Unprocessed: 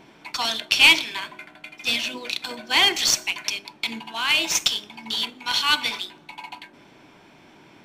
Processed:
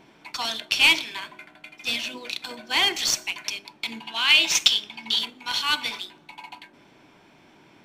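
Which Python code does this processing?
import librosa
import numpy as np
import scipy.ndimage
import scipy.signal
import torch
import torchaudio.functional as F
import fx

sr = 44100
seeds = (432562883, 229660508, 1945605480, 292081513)

y = fx.peak_eq(x, sr, hz=3200.0, db=8.0, octaves=1.7, at=(4.03, 5.19))
y = F.gain(torch.from_numpy(y), -3.5).numpy()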